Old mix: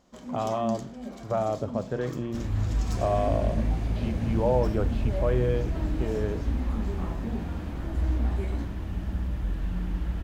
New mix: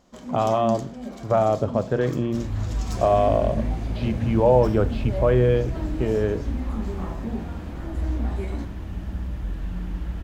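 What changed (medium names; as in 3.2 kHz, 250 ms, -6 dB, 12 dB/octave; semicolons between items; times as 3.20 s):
speech +7.5 dB; first sound +3.5 dB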